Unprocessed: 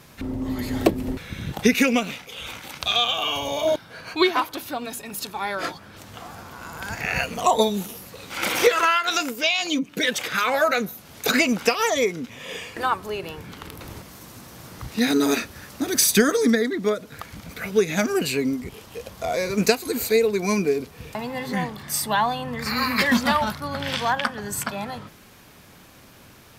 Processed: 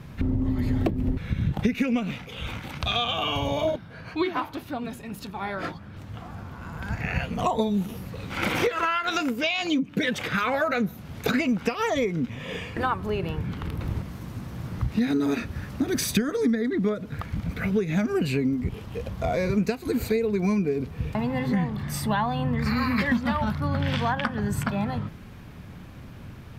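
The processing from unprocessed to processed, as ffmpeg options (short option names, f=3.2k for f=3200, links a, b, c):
-filter_complex "[0:a]asplit=3[a][b][c];[a]afade=t=out:st=3.7:d=0.02[d];[b]flanger=delay=3.4:depth=9.5:regen=-77:speed=1.9:shape=sinusoidal,afade=t=in:st=3.7:d=0.02,afade=t=out:st=7.38:d=0.02[e];[c]afade=t=in:st=7.38:d=0.02[f];[d][e][f]amix=inputs=3:normalize=0,bass=f=250:g=13,treble=f=4k:g=-11,acompressor=threshold=-21dB:ratio=6"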